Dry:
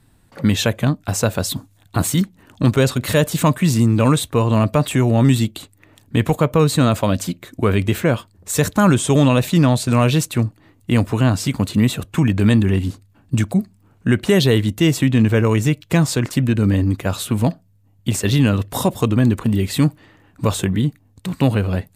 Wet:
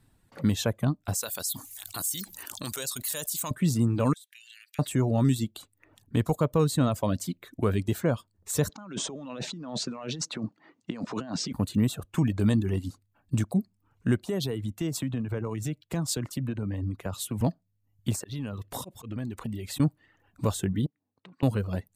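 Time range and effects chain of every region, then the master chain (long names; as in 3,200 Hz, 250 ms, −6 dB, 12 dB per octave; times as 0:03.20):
0:01.15–0:03.51: first-order pre-emphasis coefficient 0.97 + envelope flattener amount 70%
0:04.13–0:04.79: Butterworth high-pass 1,600 Hz 72 dB per octave + downward compressor 20 to 1, threshold −36 dBFS
0:08.69–0:11.53: Chebyshev band-pass filter 180–6,000 Hz, order 3 + compressor whose output falls as the input rises −26 dBFS
0:14.23–0:17.41: downward compressor 12 to 1, threshold −16 dBFS + multiband upward and downward expander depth 70%
0:18.15–0:19.80: volume swells 233 ms + downward compressor 4 to 1, threshold −22 dBFS
0:20.86–0:21.43: downward compressor 8 to 1, threshold −35 dBFS + band-pass filter 230–2,900 Hz + one half of a high-frequency compander decoder only
whole clip: reverb reduction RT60 0.64 s; dynamic equaliser 2,300 Hz, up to −8 dB, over −40 dBFS, Q 1.2; level −8 dB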